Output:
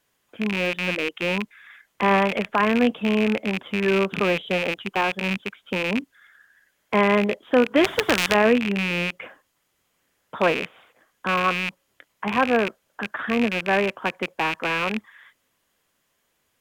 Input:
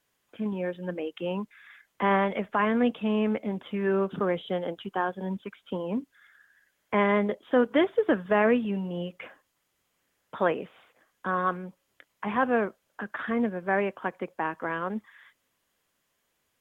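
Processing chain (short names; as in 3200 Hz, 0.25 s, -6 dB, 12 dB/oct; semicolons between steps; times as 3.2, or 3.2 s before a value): rattling part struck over -43 dBFS, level -19 dBFS; 7.84–8.35 spectral compressor 2:1; gain +4.5 dB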